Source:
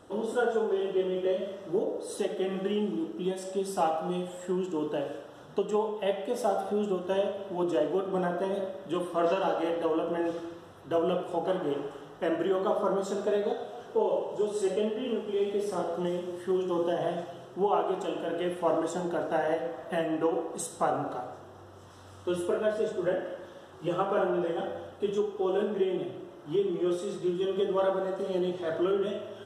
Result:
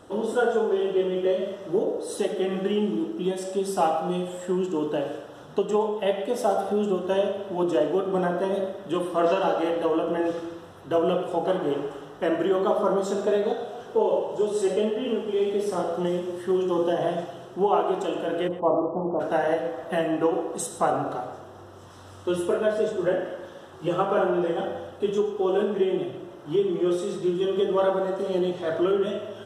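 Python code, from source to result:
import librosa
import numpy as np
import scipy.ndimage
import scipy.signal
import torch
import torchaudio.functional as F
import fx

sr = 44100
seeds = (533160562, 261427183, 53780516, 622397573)

p1 = fx.steep_lowpass(x, sr, hz=1200.0, slope=96, at=(18.47, 19.19), fade=0.02)
p2 = p1 + fx.echo_feedback(p1, sr, ms=119, feedback_pct=22, wet_db=-15.5, dry=0)
y = p2 * 10.0 ** (4.5 / 20.0)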